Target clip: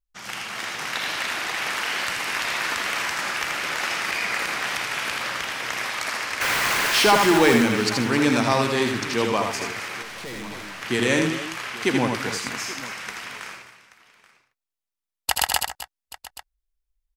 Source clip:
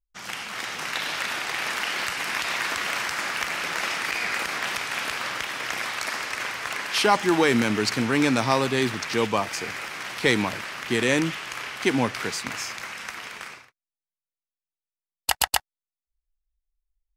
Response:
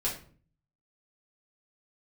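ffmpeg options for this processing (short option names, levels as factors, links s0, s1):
-filter_complex "[0:a]asettb=1/sr,asplit=3[s0][s1][s2];[s0]atrim=end=6.414[s3];[s1]atrim=start=6.41:end=7.58,asetpts=PTS-STARTPTS,afade=t=in:d=0.004:c=qsin,afade=t=out:st=1.166:d=0.004:c=qsin,aeval=exprs='val(0)+0.5*0.0841*sgn(val(0))':c=same[s4];[s2]atrim=start=7.576[s5];[s3][s4]acrossfade=d=0.004:c1=hsin:c2=qsin[s6];[s6][s5]acrossfade=d=0.004:c1=qsin:c2=hsin,aecho=1:1:72|81|152|261|277|830:0.178|0.562|0.126|0.2|0.1|0.126,asettb=1/sr,asplit=3[s7][s8][s9];[s7]atrim=end=10.024[s10];[s8]atrim=start=10.02:end=10.82,asetpts=PTS-STARTPTS,afade=t=in:d=0.004:c=qsin,afade=t=out:st=0.796:d=0.004:c=qsin,aeval=exprs='(tanh(44.7*val(0)+0.35)-tanh(0.35))/44.7':c=same[s11];[s9]atrim=start=10.816[s12];[s10][s11]acrossfade=d=0.004:c1=hsin:c2=qsin[s13];[s13][s12]acrossfade=d=0.004:c1=qsin:c2=hsin"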